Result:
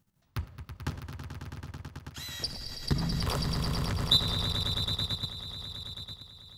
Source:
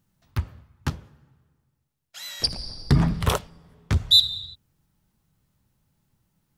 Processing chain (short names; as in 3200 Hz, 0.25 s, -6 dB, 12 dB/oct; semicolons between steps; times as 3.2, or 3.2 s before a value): compressor 2.5:1, threshold -22 dBFS, peak gain reduction 8 dB; on a send: swelling echo 0.109 s, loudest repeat 5, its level -10 dB; on the sum: level quantiser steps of 10 dB